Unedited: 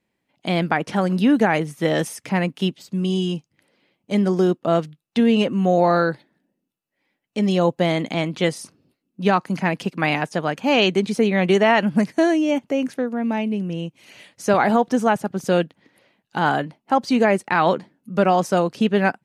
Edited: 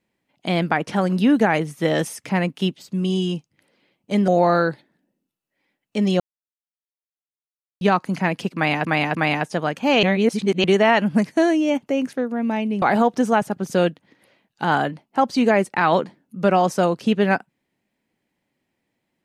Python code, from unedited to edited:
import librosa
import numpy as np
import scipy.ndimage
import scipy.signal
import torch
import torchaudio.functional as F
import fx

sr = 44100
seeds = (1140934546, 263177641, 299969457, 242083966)

y = fx.edit(x, sr, fx.cut(start_s=4.28, length_s=1.41),
    fx.silence(start_s=7.61, length_s=1.61),
    fx.repeat(start_s=9.96, length_s=0.3, count=3),
    fx.reverse_span(start_s=10.84, length_s=0.61),
    fx.cut(start_s=13.63, length_s=0.93), tone=tone)